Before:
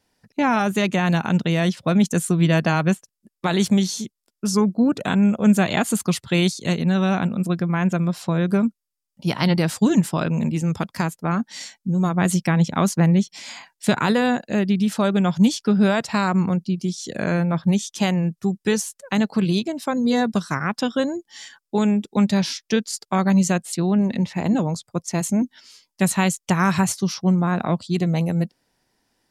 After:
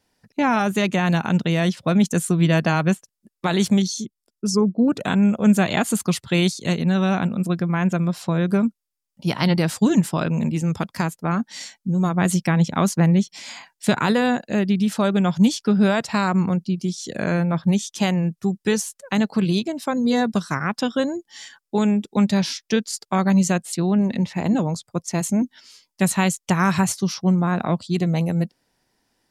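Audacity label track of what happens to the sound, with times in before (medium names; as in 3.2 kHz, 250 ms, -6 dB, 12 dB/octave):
3.820000	4.880000	resonances exaggerated exponent 1.5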